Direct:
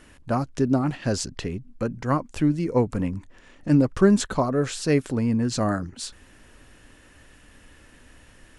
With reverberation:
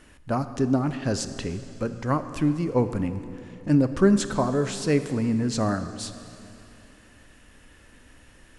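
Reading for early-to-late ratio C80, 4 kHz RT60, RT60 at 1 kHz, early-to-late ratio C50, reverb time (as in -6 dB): 11.5 dB, 2.6 s, 2.7 s, 11.0 dB, 2.8 s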